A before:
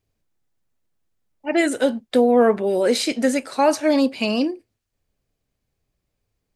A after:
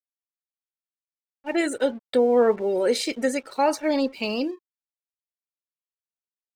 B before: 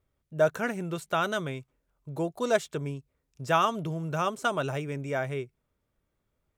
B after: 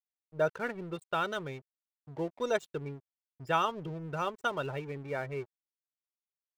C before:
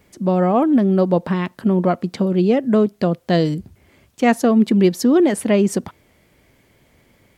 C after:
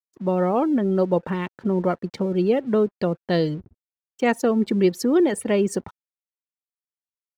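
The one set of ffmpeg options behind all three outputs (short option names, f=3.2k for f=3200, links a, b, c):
-af "aecho=1:1:2.2:0.3,afftfilt=real='re*gte(hypot(re,im),0.0141)':imag='im*gte(hypot(re,im),0.0141)':win_size=1024:overlap=0.75,aeval=exprs='sgn(val(0))*max(abs(val(0))-0.00501,0)':c=same,volume=-4dB"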